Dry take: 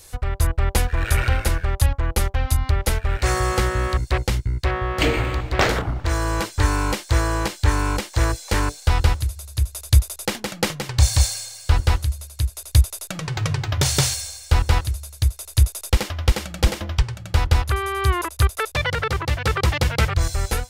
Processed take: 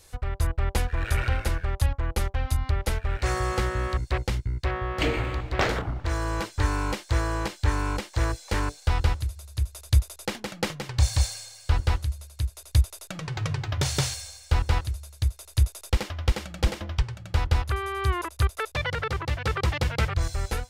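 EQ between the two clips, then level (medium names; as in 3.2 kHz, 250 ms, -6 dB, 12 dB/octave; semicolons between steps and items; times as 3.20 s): treble shelf 7.3 kHz -7.5 dB; -5.5 dB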